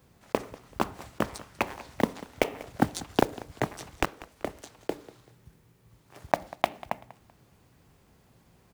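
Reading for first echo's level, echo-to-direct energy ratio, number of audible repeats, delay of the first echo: −19.0 dB, −18.5 dB, 2, 192 ms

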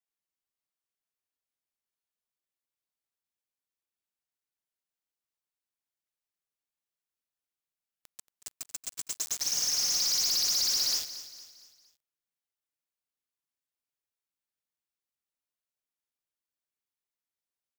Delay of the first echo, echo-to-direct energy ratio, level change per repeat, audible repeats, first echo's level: 230 ms, −13.0 dB, −7.0 dB, 4, −14.0 dB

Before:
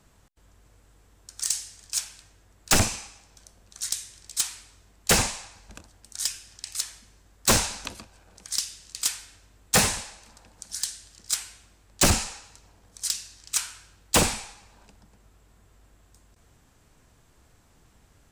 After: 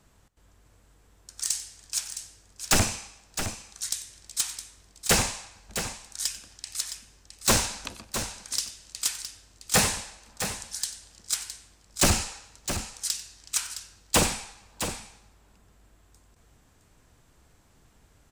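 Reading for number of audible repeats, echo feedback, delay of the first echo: 2, repeats not evenly spaced, 93 ms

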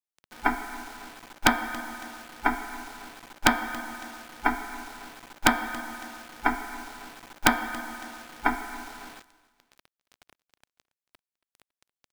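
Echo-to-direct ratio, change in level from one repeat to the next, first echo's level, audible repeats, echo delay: −20.0 dB, −6.0 dB, −21.0 dB, 2, 278 ms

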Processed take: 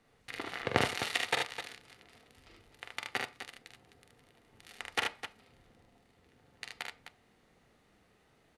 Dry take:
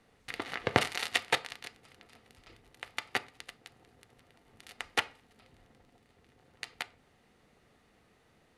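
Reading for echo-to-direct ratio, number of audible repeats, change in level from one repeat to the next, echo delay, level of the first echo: −1.5 dB, 3, repeats not evenly spaced, 45 ms, −5.5 dB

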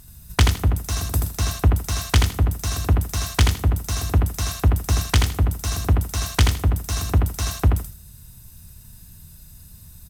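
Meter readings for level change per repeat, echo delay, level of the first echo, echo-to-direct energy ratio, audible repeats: −13.5 dB, 81 ms, −4.0 dB, −4.0 dB, 2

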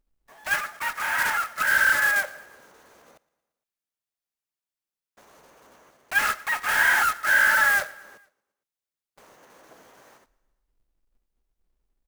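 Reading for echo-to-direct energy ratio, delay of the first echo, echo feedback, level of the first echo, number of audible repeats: −20.5 dB, 115 ms, 59%, −22.5 dB, 3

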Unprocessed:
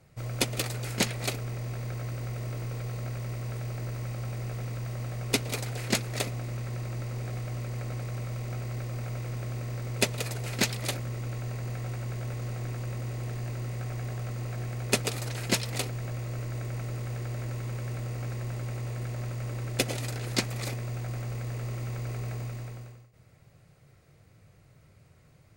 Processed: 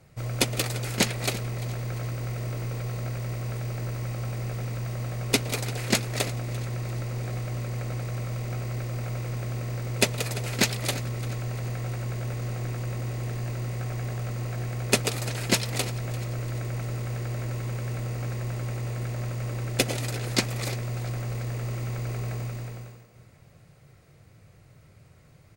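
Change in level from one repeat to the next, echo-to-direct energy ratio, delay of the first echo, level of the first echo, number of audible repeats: −7.0 dB, −16.0 dB, 344 ms, −17.0 dB, 3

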